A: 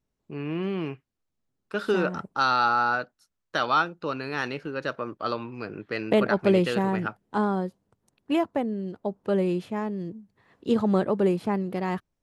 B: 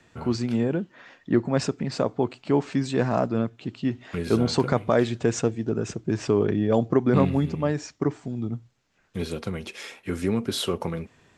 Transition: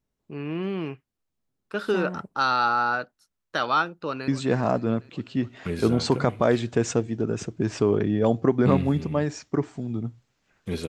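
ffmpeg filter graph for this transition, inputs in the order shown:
ffmpeg -i cue0.wav -i cue1.wav -filter_complex "[0:a]apad=whole_dur=10.88,atrim=end=10.88,atrim=end=4.282[link_01];[1:a]atrim=start=2.758:end=9.36[link_02];[link_01][link_02]acrossfade=duration=0.004:curve1=hsin:curve2=hsin,asplit=2[link_03][link_04];[link_04]afade=type=in:start_time=3.91:duration=0.01,afade=type=out:start_time=4.28:duration=0.01,aecho=0:1:270|540|810|1080|1350|1620|1890|2160|2430|2700:0.141254|0.10594|0.0794552|0.0595914|0.0446936|0.0335202|0.0251401|0.0188551|0.0141413|0.010606[link_05];[link_03][link_05]amix=inputs=2:normalize=0" out.wav

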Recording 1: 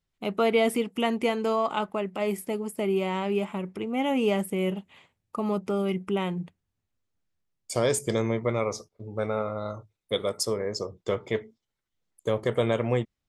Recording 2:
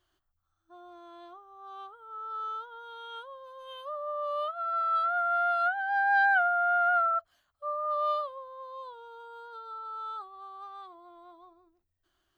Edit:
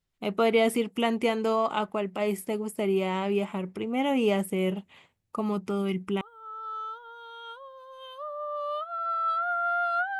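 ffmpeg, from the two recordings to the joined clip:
ffmpeg -i cue0.wav -i cue1.wav -filter_complex "[0:a]asettb=1/sr,asplit=3[link_01][link_02][link_03];[link_01]atrim=end=5.414[link_04];[link_02]atrim=start=5.41:end=6.21,asetpts=PTS-STARTPTS,afade=type=in:duration=0.004:curve=qsin,afade=type=out:start_time=0.796:duration=0.004:curve=qsin,equalizer=frequency=580:width=1.9:gain=-7.5[link_05];[link_03]atrim=start=6.206[link_06];[link_04][link_05]acrossfade=duration=0.004:curve1=hsin:curve2=qsin[link_07];[link_07][link_06]acrossfade=duration=0.004:curve1=qsin:curve2=hsin,apad=whole_dur=10.19,atrim=end=10.19,atrim=end=6.212[link_08];[1:a]atrim=start=1.878:end=5.86[link_09];[link_08][link_09]acrossfade=duration=0.004:curve1=hsin:curve2=hsin" out.wav

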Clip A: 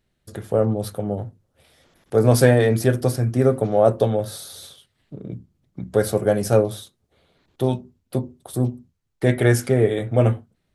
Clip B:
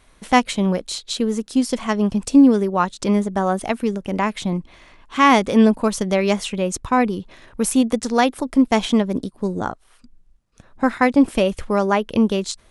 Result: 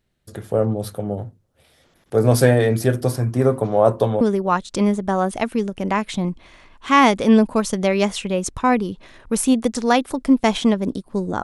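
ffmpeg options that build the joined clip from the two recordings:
ffmpeg -i cue0.wav -i cue1.wav -filter_complex "[0:a]asettb=1/sr,asplit=3[link_01][link_02][link_03];[link_01]atrim=end=3.094[link_04];[link_02]atrim=start=3.09:end=4.21,asetpts=PTS-STARTPTS,afade=type=in:duration=0.004:curve=qsin,afade=type=out:start_time=1.116:duration=0.004:curve=qsin,equalizer=frequency=1000:width=4.9:gain=11.5[link_05];[link_03]atrim=start=4.206[link_06];[link_04][link_05]acrossfade=duration=0.004:curve1=hsin:curve2=qsin[link_07];[link_07][link_06]acrossfade=duration=0.004:curve1=qsin:curve2=hsin,apad=whole_dur=11.43,atrim=end=11.43,atrim=end=4.212[link_08];[1:a]atrim=start=2.488:end=9.71[link_09];[link_08][link_09]acrossfade=duration=0.004:curve1=hsin:curve2=hsin" out.wav

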